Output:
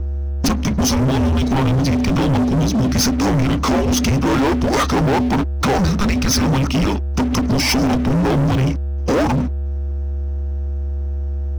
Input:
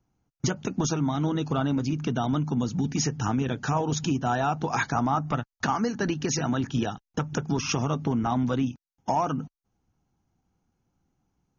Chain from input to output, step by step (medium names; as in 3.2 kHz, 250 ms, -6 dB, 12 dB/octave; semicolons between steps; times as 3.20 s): whistle 470 Hz -37 dBFS; frequency shift -400 Hz; waveshaping leveller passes 5